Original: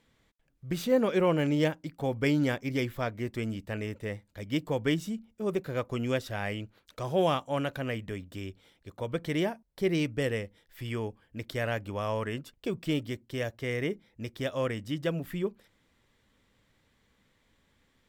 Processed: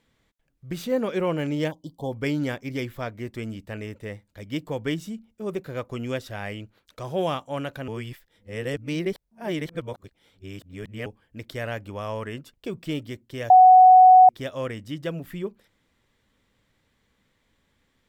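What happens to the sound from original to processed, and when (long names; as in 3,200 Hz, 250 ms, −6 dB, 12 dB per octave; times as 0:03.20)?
0:01.71–0:02.12: time-frequency box erased 1,100–3,000 Hz
0:07.88–0:11.06: reverse
0:13.50–0:14.29: beep over 742 Hz −8 dBFS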